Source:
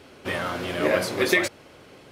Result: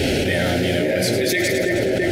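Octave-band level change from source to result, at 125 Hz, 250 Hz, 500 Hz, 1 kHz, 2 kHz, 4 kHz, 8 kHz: +13.5 dB, +9.5 dB, +7.0 dB, +0.5 dB, +4.0 dB, +7.5 dB, +8.0 dB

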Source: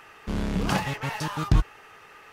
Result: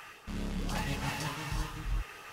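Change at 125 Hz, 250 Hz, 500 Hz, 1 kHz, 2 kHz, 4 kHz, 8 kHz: -10.0 dB, -9.5 dB, -9.0 dB, -8.0 dB, -6.0 dB, -4.5 dB, -3.0 dB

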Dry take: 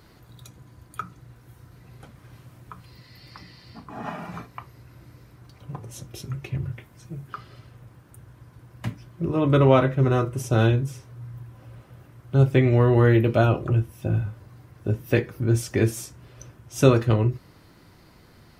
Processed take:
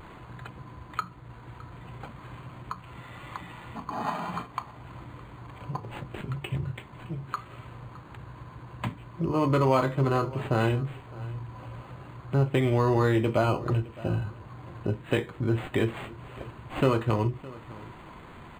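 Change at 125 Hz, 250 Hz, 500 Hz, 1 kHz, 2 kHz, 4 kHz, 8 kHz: -6.5 dB, -4.5 dB, -5.0 dB, 0.0 dB, -3.0 dB, -2.5 dB, under -10 dB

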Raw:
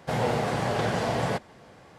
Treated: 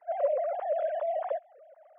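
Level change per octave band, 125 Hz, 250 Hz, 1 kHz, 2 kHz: under -40 dB, under -40 dB, -5.0 dB, -17.5 dB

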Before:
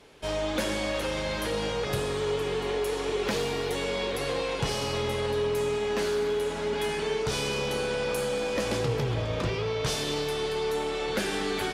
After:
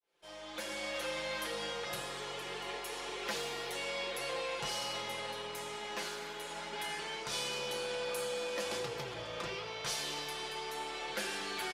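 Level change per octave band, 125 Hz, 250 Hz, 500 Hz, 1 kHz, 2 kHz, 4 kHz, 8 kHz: -20.0 dB, -15.0 dB, -13.0 dB, -6.5 dB, -6.0 dB, -5.0 dB, -5.0 dB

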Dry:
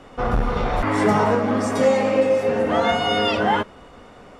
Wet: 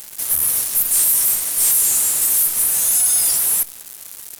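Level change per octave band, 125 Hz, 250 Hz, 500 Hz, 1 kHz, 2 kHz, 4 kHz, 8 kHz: under -15 dB, under -20 dB, -25.0 dB, -18.0 dB, -9.0 dB, -0.5 dB, +28.5 dB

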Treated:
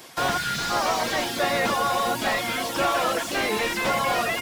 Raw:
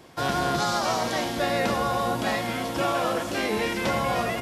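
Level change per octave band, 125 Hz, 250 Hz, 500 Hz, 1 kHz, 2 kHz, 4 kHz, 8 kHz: -4.5 dB, -2.5 dB, 0.0 dB, +2.0 dB, +4.0 dB, +3.5 dB, +4.0 dB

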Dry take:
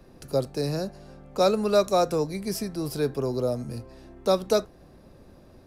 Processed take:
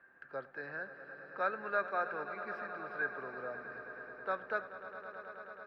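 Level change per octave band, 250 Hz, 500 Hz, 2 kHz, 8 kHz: -23.0 dB, -17.0 dB, +5.5 dB, under -40 dB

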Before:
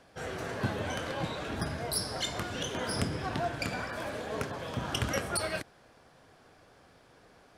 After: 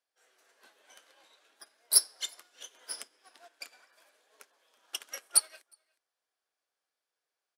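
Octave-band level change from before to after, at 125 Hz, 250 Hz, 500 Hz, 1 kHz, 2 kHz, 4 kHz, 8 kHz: under -40 dB, under -30 dB, -22.0 dB, -17.5 dB, -14.5 dB, -0.5 dB, +9.0 dB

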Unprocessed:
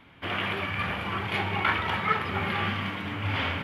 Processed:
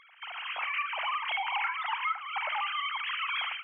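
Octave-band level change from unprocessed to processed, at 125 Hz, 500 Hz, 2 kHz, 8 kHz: under -40 dB, -14.5 dB, -3.0 dB, no reading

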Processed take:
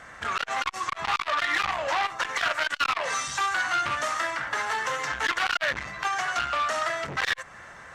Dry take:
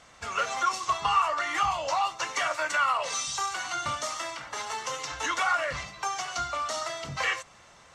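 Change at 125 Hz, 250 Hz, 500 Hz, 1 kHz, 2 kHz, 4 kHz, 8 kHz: -0.5 dB, +2.5 dB, +1.0 dB, +0.5 dB, +5.0 dB, +2.5 dB, -2.5 dB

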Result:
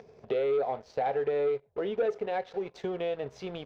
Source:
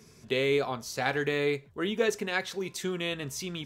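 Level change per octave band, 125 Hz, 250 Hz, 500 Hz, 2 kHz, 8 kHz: -8.5 dB, -6.0 dB, +1.5 dB, -12.0 dB, under -20 dB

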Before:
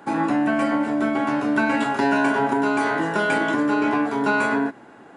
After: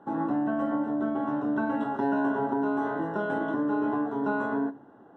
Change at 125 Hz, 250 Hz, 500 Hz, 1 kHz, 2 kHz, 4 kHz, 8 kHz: -6.0 dB, -5.5 dB, -6.5 dB, -8.0 dB, -13.5 dB, under -20 dB, under -25 dB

